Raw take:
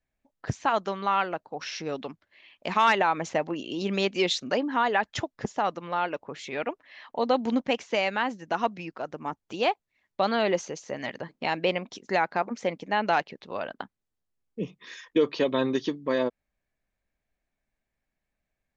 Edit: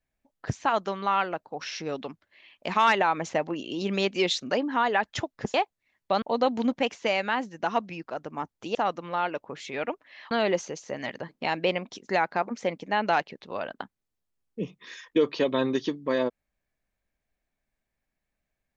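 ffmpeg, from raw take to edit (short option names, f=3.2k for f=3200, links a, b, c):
-filter_complex "[0:a]asplit=5[a][b][c][d][e];[a]atrim=end=5.542[f];[b]atrim=start=9.628:end=10.312[g];[c]atrim=start=7.098:end=9.632[h];[d]atrim=start=5.538:end=7.102[i];[e]atrim=start=10.308[j];[f][g]acrossfade=d=0.004:c1=hsin:c2=hsin[k];[k][h]acrossfade=d=0.004:c1=hsin:c2=hsin[l];[l][i]acrossfade=d=0.004:c1=hsin:c2=hsin[m];[m][j]acrossfade=d=0.004:c1=hsin:c2=hsin"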